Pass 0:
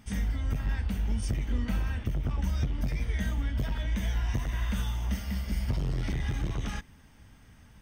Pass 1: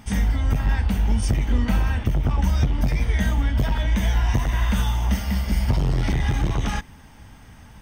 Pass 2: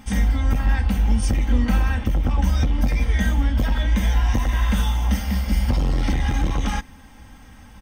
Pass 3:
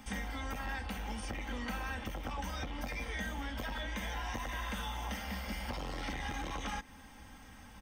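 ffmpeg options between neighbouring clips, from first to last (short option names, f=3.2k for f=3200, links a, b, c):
-af "equalizer=f=850:w=2.2:g=5.5,volume=9dB"
-af "aecho=1:1:3.8:0.49"
-filter_complex "[0:a]asplit=2[a][b];[b]asoftclip=type=tanh:threshold=-22dB,volume=-11dB[c];[a][c]amix=inputs=2:normalize=0,lowshelf=f=230:g=-6.5,acrossover=split=290|650|3500[d][e][f][g];[d]acompressor=threshold=-35dB:ratio=4[h];[e]acompressor=threshold=-40dB:ratio=4[i];[f]acompressor=threshold=-33dB:ratio=4[j];[g]acompressor=threshold=-45dB:ratio=4[k];[h][i][j][k]amix=inputs=4:normalize=0,volume=-7dB"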